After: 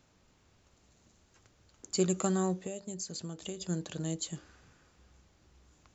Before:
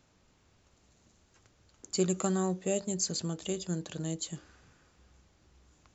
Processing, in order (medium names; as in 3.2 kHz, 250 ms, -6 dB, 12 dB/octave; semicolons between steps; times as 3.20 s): 2.60–3.61 s: compression 6:1, threshold -37 dBFS, peak gain reduction 11 dB